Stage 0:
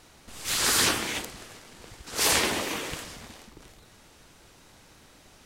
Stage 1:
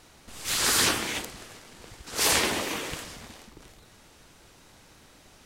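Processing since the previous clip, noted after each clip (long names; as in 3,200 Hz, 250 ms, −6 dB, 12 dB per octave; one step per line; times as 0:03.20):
no processing that can be heard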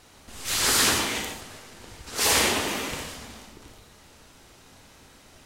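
reverb whose tail is shaped and stops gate 170 ms flat, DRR 1.5 dB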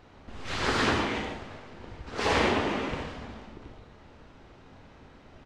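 head-to-tape spacing loss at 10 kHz 33 dB
echo with shifted repeats 174 ms, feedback 55%, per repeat +150 Hz, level −21.5 dB
level +3.5 dB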